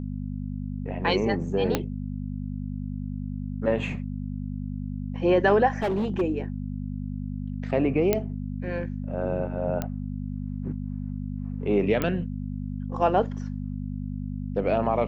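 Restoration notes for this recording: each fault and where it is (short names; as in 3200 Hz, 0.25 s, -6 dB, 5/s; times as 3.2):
hum 50 Hz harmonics 5 -32 dBFS
1.75 pop -8 dBFS
5.82–6.22 clipped -22 dBFS
8.13 pop -8 dBFS
9.82 pop -15 dBFS
12.02 pop -12 dBFS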